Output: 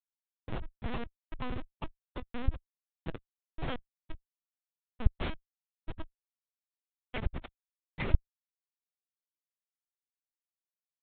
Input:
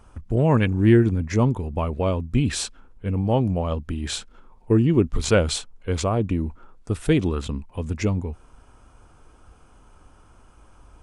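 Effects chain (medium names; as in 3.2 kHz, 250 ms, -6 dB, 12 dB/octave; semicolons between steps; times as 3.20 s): 3.42–3.96 s: comb filter that takes the minimum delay 5.5 ms; de-esser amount 95%; Bessel high-pass 170 Hz, order 2; 5.36–6.93 s: compression 20:1, threshold -28 dBFS, peak gain reduction 12.5 dB; band-pass sweep 1.4 kHz -> 2.9 kHz, 1.53–3.64 s; sine folder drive 12 dB, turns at -20.5 dBFS; inharmonic resonator 240 Hz, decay 0.38 s, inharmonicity 0.008; square tremolo 1.4 Hz, depth 60%, duty 45%; Schmitt trigger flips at -40.5 dBFS; LPC vocoder at 8 kHz pitch kept; trim +18 dB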